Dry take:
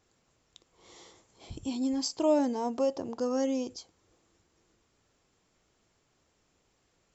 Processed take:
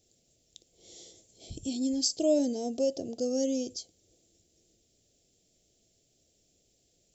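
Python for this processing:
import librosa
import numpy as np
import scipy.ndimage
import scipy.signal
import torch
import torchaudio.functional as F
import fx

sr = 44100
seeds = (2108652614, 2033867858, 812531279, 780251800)

y = fx.curve_eq(x, sr, hz=(670.0, 990.0, 3400.0, 6600.0), db=(0, -28, 2, 7))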